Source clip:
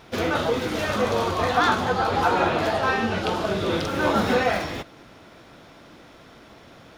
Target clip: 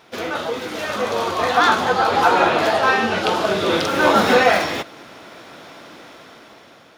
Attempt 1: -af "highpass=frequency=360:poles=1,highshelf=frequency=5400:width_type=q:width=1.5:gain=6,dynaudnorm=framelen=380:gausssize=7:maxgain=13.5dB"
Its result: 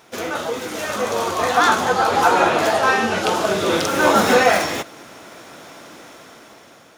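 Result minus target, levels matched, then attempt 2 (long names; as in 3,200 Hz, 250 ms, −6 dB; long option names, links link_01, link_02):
8,000 Hz band +6.5 dB
-af "highpass=frequency=360:poles=1,dynaudnorm=framelen=380:gausssize=7:maxgain=13.5dB"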